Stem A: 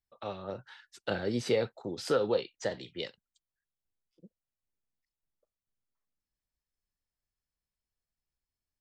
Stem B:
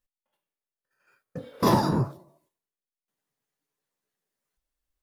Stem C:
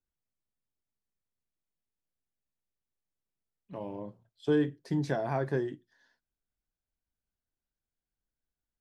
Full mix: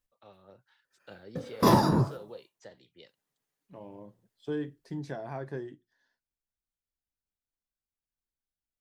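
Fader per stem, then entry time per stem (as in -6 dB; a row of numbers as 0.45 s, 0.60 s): -16.5 dB, 0.0 dB, -7.0 dB; 0.00 s, 0.00 s, 0.00 s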